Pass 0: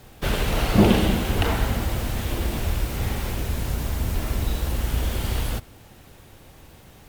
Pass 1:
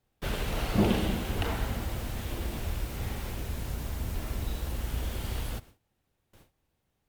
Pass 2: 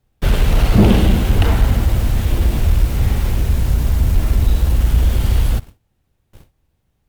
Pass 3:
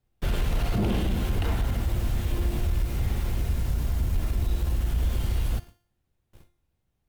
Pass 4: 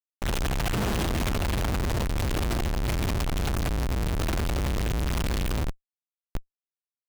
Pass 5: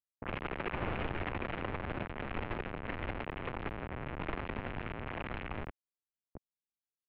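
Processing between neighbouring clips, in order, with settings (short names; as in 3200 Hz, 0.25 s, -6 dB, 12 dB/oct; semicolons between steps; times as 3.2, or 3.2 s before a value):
gate with hold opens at -35 dBFS; gain -8.5 dB
low shelf 160 Hz +11 dB; sample leveller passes 1; gain +7 dB
limiter -8 dBFS, peak gain reduction 6.5 dB; resonator 350 Hz, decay 0.53 s, mix 70%
Schmitt trigger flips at -45.5 dBFS
mistuned SSB -330 Hz 290–3000 Hz; low-pass opened by the level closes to 340 Hz, open at -28.5 dBFS; gain -4 dB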